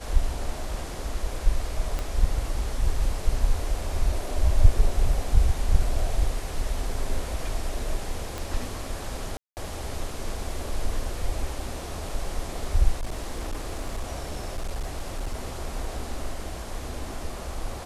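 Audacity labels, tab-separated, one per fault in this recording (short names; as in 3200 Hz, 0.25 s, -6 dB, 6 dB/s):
1.990000	1.990000	pop -16 dBFS
8.380000	8.380000	pop
9.370000	9.570000	gap 0.199 s
12.990000	15.460000	clipped -25 dBFS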